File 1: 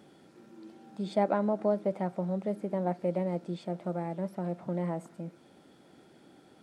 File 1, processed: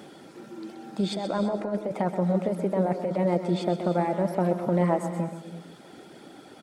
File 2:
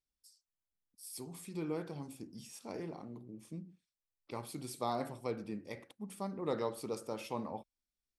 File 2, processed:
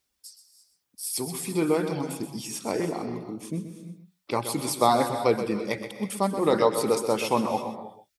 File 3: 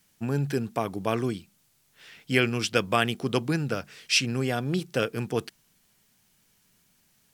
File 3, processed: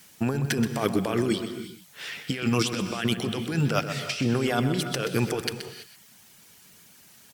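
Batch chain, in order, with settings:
high-pass filter 48 Hz
reverb reduction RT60 0.64 s
low-shelf EQ 200 Hz −6.5 dB
compressor whose output falls as the input rises −35 dBFS, ratio −1
on a send: single-tap delay 127 ms −10 dB
on the sum: reverb whose tail is shaped and stops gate 360 ms rising, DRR 10 dB
loudness normalisation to −27 LKFS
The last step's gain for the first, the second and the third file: +10.0, +16.5, +8.0 decibels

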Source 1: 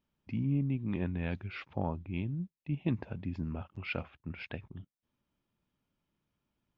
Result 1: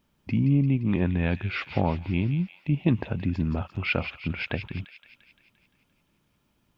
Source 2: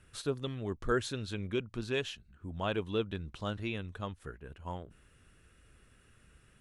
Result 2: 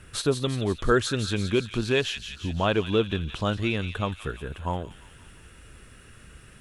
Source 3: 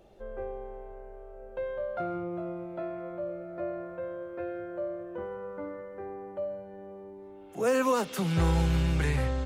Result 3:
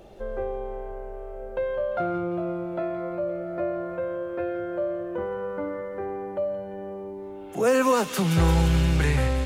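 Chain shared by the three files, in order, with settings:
in parallel at −1 dB: downward compressor, threshold −39 dBFS
on the sum: delay with a high-pass on its return 173 ms, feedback 60%, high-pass 2,400 Hz, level −6.5 dB
loudness normalisation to −27 LKFS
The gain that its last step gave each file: +7.0, +7.5, +4.0 decibels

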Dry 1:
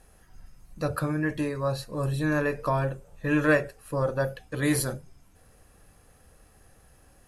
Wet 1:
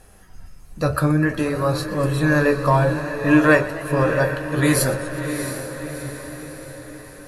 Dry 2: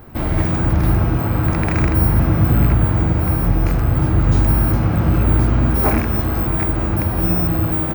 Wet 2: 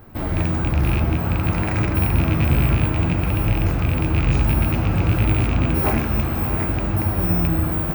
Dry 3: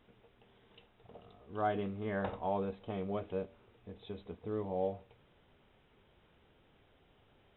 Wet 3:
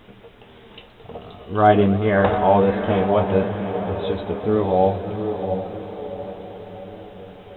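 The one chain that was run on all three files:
loose part that buzzes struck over −11 dBFS, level −13 dBFS
on a send: feedback delay with all-pass diffusion 688 ms, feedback 54%, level −8.5 dB
on the sum: flanger 0.57 Hz, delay 9.2 ms, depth 5.3 ms, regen +58%
feedback echo with a swinging delay time 122 ms, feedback 79%, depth 156 cents, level −18.5 dB
loudness normalisation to −20 LKFS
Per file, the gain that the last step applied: +12.0, 0.0, +22.5 decibels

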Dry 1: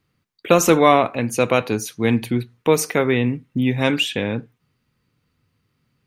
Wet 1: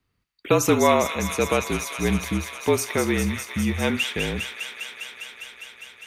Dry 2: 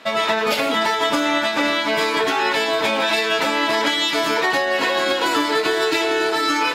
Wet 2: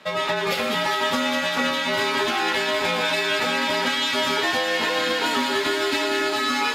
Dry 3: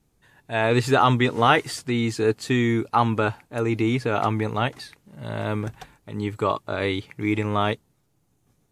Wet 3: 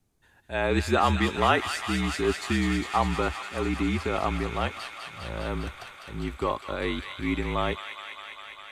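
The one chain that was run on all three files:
delay with a high-pass on its return 202 ms, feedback 84%, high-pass 1,700 Hz, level −5 dB
frequency shifter −43 Hz
level −4.5 dB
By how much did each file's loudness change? −4.5, −3.0, −4.5 LU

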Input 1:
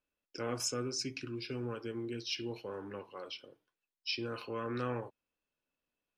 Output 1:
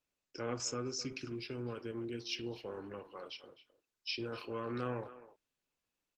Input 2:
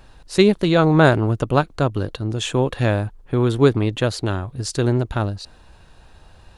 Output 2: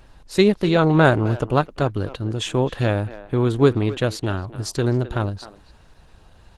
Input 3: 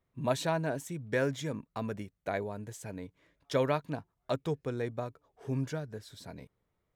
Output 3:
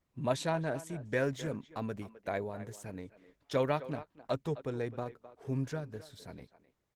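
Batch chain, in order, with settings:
far-end echo of a speakerphone 260 ms, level −14 dB
level −1 dB
Opus 16 kbit/s 48,000 Hz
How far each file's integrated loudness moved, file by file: −2.0, −1.0, −1.5 LU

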